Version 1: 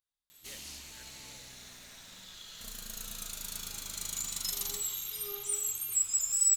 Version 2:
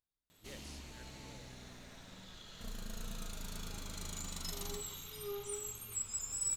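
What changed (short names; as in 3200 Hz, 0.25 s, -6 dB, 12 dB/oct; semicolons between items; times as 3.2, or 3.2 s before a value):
background: add high shelf 7900 Hz -9.5 dB; master: add tilt shelf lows +6 dB, about 1100 Hz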